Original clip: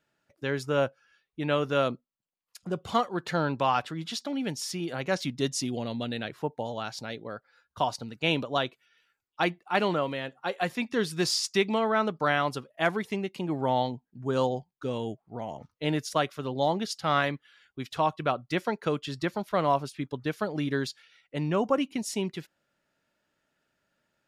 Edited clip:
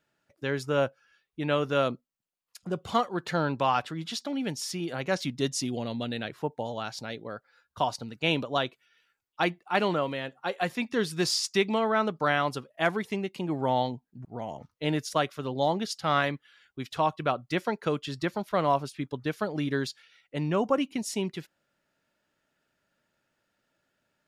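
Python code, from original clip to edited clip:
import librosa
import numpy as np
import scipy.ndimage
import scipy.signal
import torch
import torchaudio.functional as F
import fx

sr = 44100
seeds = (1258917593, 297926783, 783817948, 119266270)

y = fx.edit(x, sr, fx.cut(start_s=14.25, length_s=1.0), tone=tone)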